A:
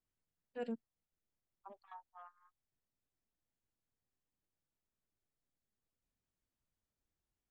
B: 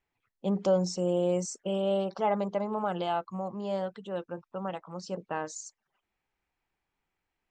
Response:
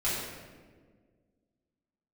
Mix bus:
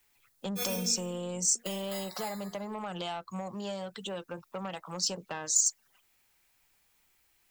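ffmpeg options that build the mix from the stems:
-filter_complex "[0:a]acrusher=samples=15:mix=1:aa=0.000001,volume=0.891,asplit=2[s0][s1];[s1]volume=0.422[s2];[1:a]acrossover=split=150[s3][s4];[s4]acompressor=threshold=0.0126:ratio=10[s5];[s3][s5]amix=inputs=2:normalize=0,asoftclip=type=tanh:threshold=0.0251,volume=1.26,asplit=2[s6][s7];[s7]apad=whole_len=330879[s8];[s0][s8]sidechaincompress=threshold=0.00562:ratio=8:attack=16:release=1140[s9];[2:a]atrim=start_sample=2205[s10];[s2][s10]afir=irnorm=-1:irlink=0[s11];[s9][s6][s11]amix=inputs=3:normalize=0,crystalizer=i=8.5:c=0"

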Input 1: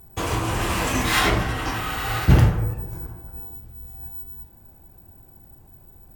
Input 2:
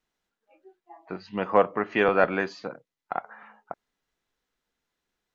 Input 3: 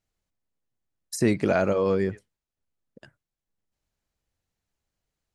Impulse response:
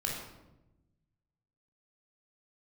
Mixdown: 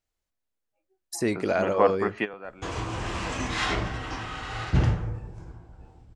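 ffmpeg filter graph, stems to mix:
-filter_complex "[0:a]lowpass=f=7200:w=0.5412,lowpass=f=7200:w=1.3066,adelay=2450,volume=0.422[s0];[1:a]adelay=250,volume=0.841[s1];[2:a]equalizer=f=150:w=1.1:g=-8.5,volume=0.841,asplit=2[s2][s3];[s3]apad=whole_len=246655[s4];[s1][s4]sidechaingate=range=0.126:threshold=0.00447:ratio=16:detection=peak[s5];[s0][s5][s2]amix=inputs=3:normalize=0"

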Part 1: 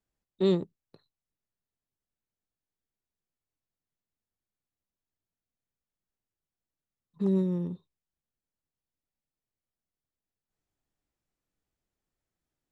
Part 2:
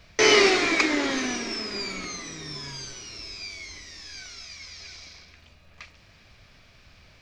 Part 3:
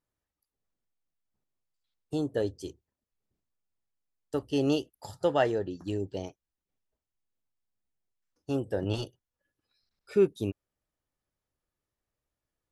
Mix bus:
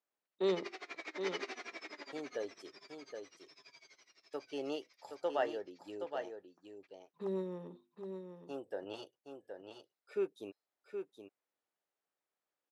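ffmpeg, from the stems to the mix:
-filter_complex "[0:a]bandreject=f=50:t=h:w=6,bandreject=f=100:t=h:w=6,bandreject=f=150:t=h:w=6,bandreject=f=200:t=h:w=6,bandreject=f=250:t=h:w=6,bandreject=f=300:t=h:w=6,bandreject=f=350:t=h:w=6,volume=0.944,asplit=3[s0][s1][s2];[s1]volume=0.422[s3];[1:a]agate=range=0.1:threshold=0.00794:ratio=16:detection=peak,aeval=exprs='val(0)*pow(10,-25*(0.5-0.5*cos(2*PI*12*n/s))/20)':c=same,adelay=250,volume=0.224,asplit=2[s4][s5];[s5]volume=0.708[s6];[2:a]volume=0.473,asplit=2[s7][s8];[s8]volume=0.447[s9];[s2]apad=whole_len=329122[s10];[s4][s10]sidechaincompress=threshold=0.0355:ratio=8:attack=16:release=780[s11];[s3][s6][s9]amix=inputs=3:normalize=0,aecho=0:1:770:1[s12];[s0][s11][s7][s12]amix=inputs=4:normalize=0,highpass=490,highshelf=f=3800:g=-11"

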